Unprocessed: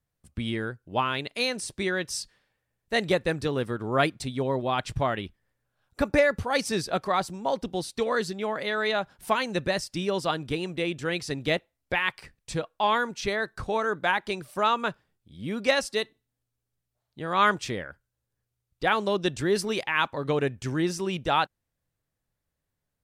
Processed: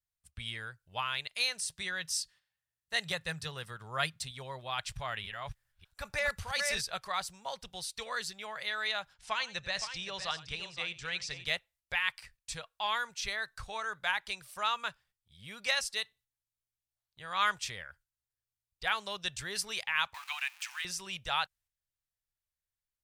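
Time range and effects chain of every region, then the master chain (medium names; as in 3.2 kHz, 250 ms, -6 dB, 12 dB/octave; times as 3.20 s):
1.60–4.31 s: high-pass 51 Hz + peaking EQ 160 Hz +9 dB 0.25 oct + band-stop 2.3 kHz, Q 15
4.94–6.81 s: chunks repeated in reverse 302 ms, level -3 dB + transient shaper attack -4 dB, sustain +3 dB
9.14–11.46 s: low-pass 7.2 kHz 24 dB/octave + multi-tap echo 90/517 ms -17.5/-10.5 dB
20.14–20.85 s: jump at every zero crossing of -39 dBFS + steep high-pass 750 Hz 72 dB/octave + peaking EQ 2.5 kHz +10 dB 0.46 oct
whole clip: gate -55 dBFS, range -6 dB; amplifier tone stack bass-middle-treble 10-0-10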